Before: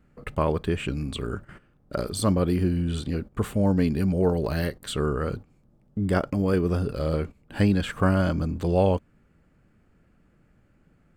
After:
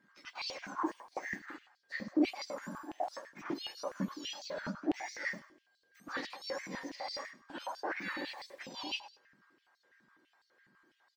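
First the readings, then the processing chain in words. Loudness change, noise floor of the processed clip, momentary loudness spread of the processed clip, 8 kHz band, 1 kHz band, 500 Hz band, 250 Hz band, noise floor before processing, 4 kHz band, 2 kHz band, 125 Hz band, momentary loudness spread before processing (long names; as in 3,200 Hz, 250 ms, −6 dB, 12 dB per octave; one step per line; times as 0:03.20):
−14.0 dB, −76 dBFS, 10 LU, −10.5 dB, −8.5 dB, −17.0 dB, −14.0 dB, −62 dBFS, −3.5 dB, −4.0 dB, −29.0 dB, 10 LU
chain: frequency axis turned over on the octave scale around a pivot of 1,600 Hz
de-essing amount 95%
leveller curve on the samples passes 1
reversed playback
downward compressor 6 to 1, threshold −40 dBFS, peak gain reduction 18 dB
reversed playback
steady tone 1,600 Hz −74 dBFS
high-frequency loss of the air 180 metres
on a send: repeating echo 101 ms, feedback 26%, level −13 dB
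on the sum: high-pass on a step sequencer 12 Hz 200–4,500 Hz
level +3.5 dB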